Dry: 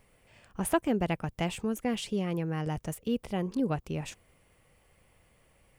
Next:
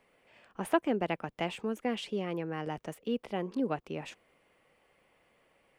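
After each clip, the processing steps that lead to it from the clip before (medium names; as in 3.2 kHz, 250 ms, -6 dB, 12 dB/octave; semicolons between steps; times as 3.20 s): three-band isolator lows -18 dB, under 210 Hz, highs -12 dB, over 4.2 kHz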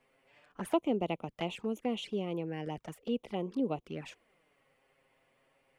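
touch-sensitive flanger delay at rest 8 ms, full sweep at -31 dBFS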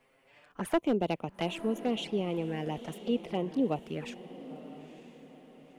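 hard clipper -23.5 dBFS, distortion -17 dB; echo that smears into a reverb 937 ms, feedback 40%, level -14 dB; trim +3.5 dB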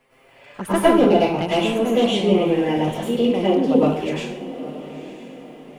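plate-style reverb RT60 0.66 s, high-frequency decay 0.8×, pre-delay 90 ms, DRR -8.5 dB; trim +5 dB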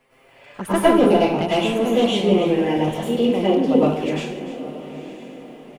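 delay 295 ms -13.5 dB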